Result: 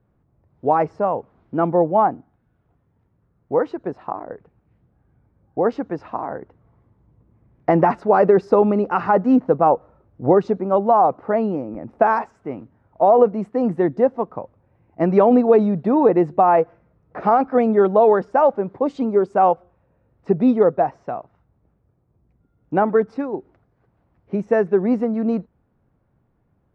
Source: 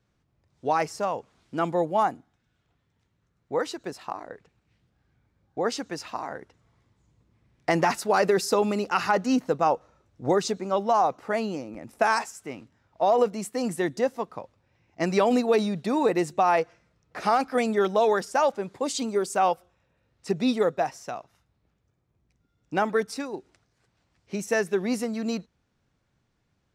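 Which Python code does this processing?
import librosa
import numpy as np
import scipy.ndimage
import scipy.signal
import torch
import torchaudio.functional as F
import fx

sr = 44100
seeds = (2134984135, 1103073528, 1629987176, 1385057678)

y = scipy.signal.sosfilt(scipy.signal.butter(2, 1000.0, 'lowpass', fs=sr, output='sos'), x)
y = y * 10.0 ** (8.5 / 20.0)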